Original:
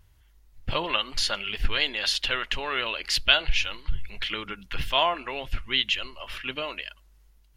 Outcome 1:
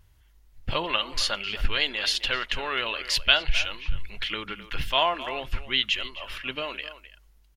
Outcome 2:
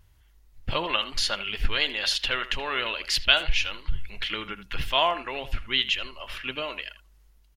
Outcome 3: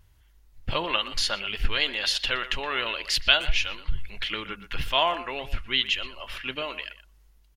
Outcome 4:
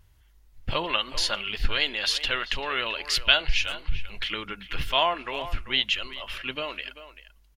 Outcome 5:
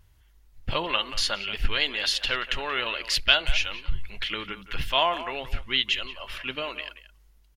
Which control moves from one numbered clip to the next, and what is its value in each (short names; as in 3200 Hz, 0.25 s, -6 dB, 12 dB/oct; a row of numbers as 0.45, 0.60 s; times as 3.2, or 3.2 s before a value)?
speakerphone echo, time: 260, 80, 120, 390, 180 ms